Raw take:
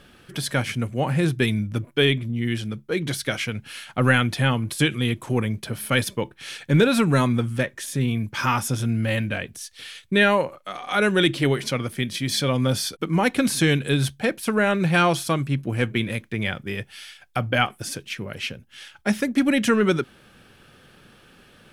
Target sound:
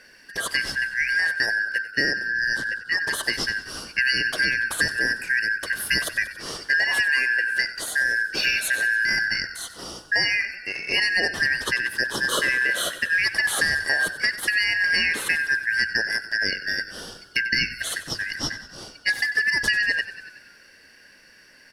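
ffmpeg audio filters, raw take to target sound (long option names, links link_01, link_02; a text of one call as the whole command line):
ffmpeg -i in.wav -filter_complex "[0:a]afftfilt=real='real(if(lt(b,272),68*(eq(floor(b/68),0)*2+eq(floor(b/68),1)*0+eq(floor(b/68),2)*3+eq(floor(b/68),3)*1)+mod(b,68),b),0)':imag='imag(if(lt(b,272),68*(eq(floor(b/68),0)*2+eq(floor(b/68),1)*0+eq(floor(b/68),2)*3+eq(floor(b/68),3)*1)+mod(b,68),b),0)':win_size=2048:overlap=0.75,adynamicequalizer=threshold=0.00631:dfrequency=6500:dqfactor=3.4:tfrequency=6500:tqfactor=3.4:attack=5:release=100:ratio=0.375:range=2.5:mode=cutabove:tftype=bell,dynaudnorm=framelen=260:gausssize=21:maxgain=6dB,bandreject=frequency=50:width_type=h:width=6,bandreject=frequency=100:width_type=h:width=6,acompressor=threshold=-18dB:ratio=12,asplit=2[link_01][link_02];[link_02]asplit=7[link_03][link_04][link_05][link_06][link_07][link_08][link_09];[link_03]adelay=94,afreqshift=-35,volume=-14.5dB[link_10];[link_04]adelay=188,afreqshift=-70,volume=-18.4dB[link_11];[link_05]adelay=282,afreqshift=-105,volume=-22.3dB[link_12];[link_06]adelay=376,afreqshift=-140,volume=-26.1dB[link_13];[link_07]adelay=470,afreqshift=-175,volume=-30dB[link_14];[link_08]adelay=564,afreqshift=-210,volume=-33.9dB[link_15];[link_09]adelay=658,afreqshift=-245,volume=-37.8dB[link_16];[link_10][link_11][link_12][link_13][link_14][link_15][link_16]amix=inputs=7:normalize=0[link_17];[link_01][link_17]amix=inputs=2:normalize=0" out.wav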